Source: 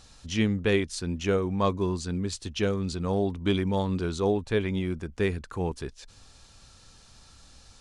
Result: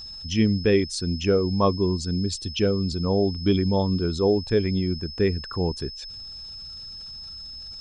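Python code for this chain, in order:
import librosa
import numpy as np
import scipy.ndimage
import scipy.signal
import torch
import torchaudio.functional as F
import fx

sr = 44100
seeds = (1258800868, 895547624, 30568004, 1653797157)

y = fx.envelope_sharpen(x, sr, power=1.5)
y = y + 10.0 ** (-41.0 / 20.0) * np.sin(2.0 * np.pi * 5200.0 * np.arange(len(y)) / sr)
y = y * 10.0 ** (4.5 / 20.0)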